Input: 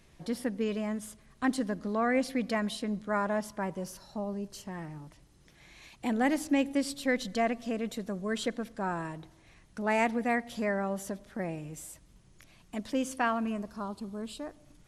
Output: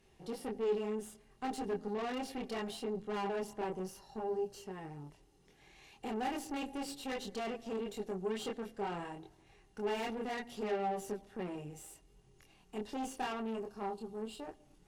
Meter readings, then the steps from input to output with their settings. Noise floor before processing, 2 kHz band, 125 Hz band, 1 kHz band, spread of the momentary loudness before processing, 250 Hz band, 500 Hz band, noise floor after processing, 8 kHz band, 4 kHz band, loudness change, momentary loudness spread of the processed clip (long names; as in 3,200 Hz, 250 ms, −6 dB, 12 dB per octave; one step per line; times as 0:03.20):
−60 dBFS, −11.5 dB, −8.0 dB, −6.0 dB, 14 LU, −10.0 dB, −4.0 dB, −66 dBFS, −7.5 dB, −5.0 dB, −7.0 dB, 12 LU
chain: multi-voice chorus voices 2, 0.69 Hz, delay 25 ms, depth 3.1 ms
tube saturation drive 37 dB, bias 0.65
hollow resonant body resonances 410/790/2,800 Hz, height 14 dB, ringing for 60 ms
level −1 dB